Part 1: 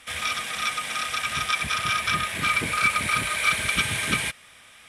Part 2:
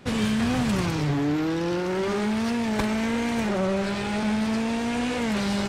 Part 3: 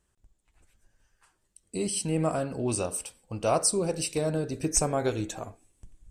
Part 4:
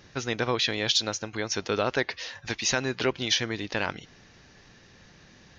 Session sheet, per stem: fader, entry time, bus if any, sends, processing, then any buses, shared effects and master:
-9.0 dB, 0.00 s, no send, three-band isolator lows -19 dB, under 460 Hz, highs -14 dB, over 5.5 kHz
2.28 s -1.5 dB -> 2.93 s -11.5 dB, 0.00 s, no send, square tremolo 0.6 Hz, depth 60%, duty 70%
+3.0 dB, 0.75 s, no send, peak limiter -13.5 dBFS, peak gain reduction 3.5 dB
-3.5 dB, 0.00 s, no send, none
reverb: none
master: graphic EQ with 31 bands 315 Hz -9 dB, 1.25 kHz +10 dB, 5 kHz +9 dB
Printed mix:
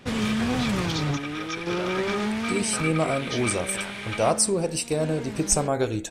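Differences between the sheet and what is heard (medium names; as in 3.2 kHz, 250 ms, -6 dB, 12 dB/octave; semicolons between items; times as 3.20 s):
stem 3: missing peak limiter -13.5 dBFS, peak gain reduction 3.5 dB; stem 4 -3.5 dB -> -10.0 dB; master: missing graphic EQ with 31 bands 315 Hz -9 dB, 1.25 kHz +10 dB, 5 kHz +9 dB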